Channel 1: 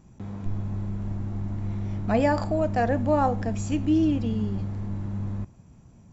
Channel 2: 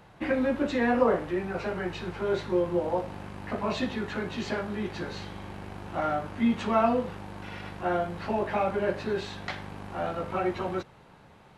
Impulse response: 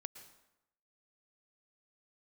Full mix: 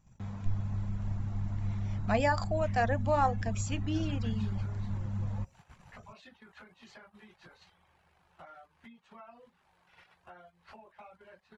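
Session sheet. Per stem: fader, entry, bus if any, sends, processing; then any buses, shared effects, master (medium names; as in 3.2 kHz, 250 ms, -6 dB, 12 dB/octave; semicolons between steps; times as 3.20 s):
+0.5 dB, 0.00 s, no send, de-hum 60.62 Hz, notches 7
-9.5 dB, 2.45 s, no send, hum notches 50/100/150/200/250/300 Hz; compression 8:1, threshold -35 dBFS, peak gain reduction 17 dB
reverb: none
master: reverb removal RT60 0.59 s; gate -51 dBFS, range -10 dB; peaking EQ 340 Hz -12.5 dB 1.5 oct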